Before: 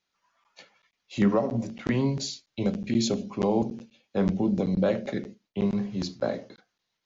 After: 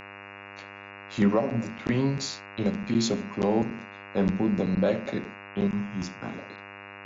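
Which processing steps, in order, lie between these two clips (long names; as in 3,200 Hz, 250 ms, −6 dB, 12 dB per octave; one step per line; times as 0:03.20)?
0:05.67–0:06.38: phaser with its sweep stopped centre 2,800 Hz, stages 8
hum with harmonics 100 Hz, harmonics 28, −44 dBFS 0 dB per octave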